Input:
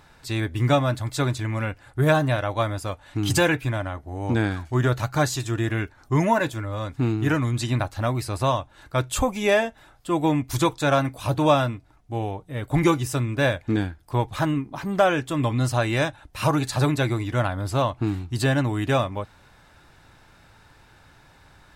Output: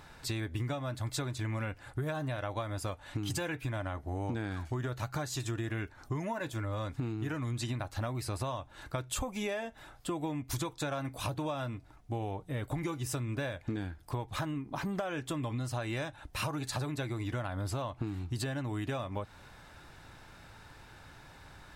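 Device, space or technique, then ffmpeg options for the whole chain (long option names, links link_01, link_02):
serial compression, leveller first: -af "acompressor=threshold=-25dB:ratio=2.5,acompressor=threshold=-33dB:ratio=5"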